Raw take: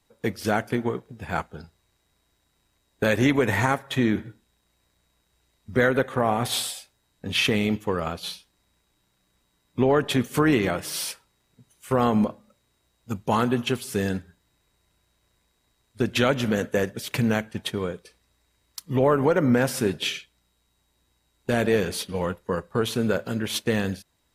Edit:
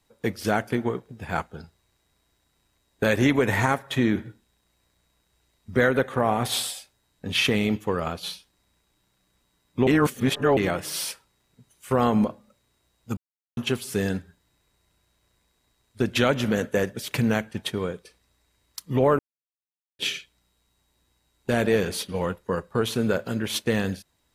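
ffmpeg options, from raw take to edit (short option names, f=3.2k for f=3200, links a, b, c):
-filter_complex "[0:a]asplit=7[a][b][c][d][e][f][g];[a]atrim=end=9.872[h];[b]atrim=start=9.868:end=10.572,asetpts=PTS-STARTPTS,areverse[i];[c]atrim=start=10.568:end=13.17,asetpts=PTS-STARTPTS,afade=t=out:st=2.598:d=0.004:c=hsin[j];[d]atrim=start=13.17:end=13.57,asetpts=PTS-STARTPTS,volume=0[k];[e]atrim=start=13.57:end=19.19,asetpts=PTS-STARTPTS,afade=t=in:d=0.004:c=hsin,afade=t=out:st=5.616:d=0.004:c=hsin[l];[f]atrim=start=19.19:end=19.99,asetpts=PTS-STARTPTS,volume=0[m];[g]atrim=start=19.99,asetpts=PTS-STARTPTS,afade=t=in:d=0.004:c=hsin[n];[h][i]acrossfade=d=0.004:c1=hsin:c2=hsin[o];[j][k][l][m][n]concat=n=5:v=0:a=1[p];[o][p]acrossfade=d=0.004:c1=hsin:c2=hsin"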